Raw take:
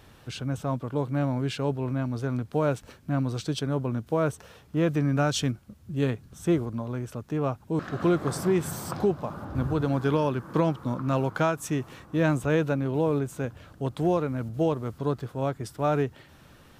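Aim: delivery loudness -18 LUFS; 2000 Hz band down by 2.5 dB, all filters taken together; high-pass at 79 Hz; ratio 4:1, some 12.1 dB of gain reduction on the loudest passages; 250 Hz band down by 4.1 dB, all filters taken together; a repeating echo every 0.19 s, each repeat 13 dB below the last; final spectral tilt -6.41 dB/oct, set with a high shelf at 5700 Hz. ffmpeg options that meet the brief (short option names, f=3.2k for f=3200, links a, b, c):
-af "highpass=79,equalizer=f=250:t=o:g=-6,equalizer=f=2k:t=o:g=-3,highshelf=f=5.7k:g=-5.5,acompressor=threshold=-36dB:ratio=4,aecho=1:1:190|380|570:0.224|0.0493|0.0108,volume=21.5dB"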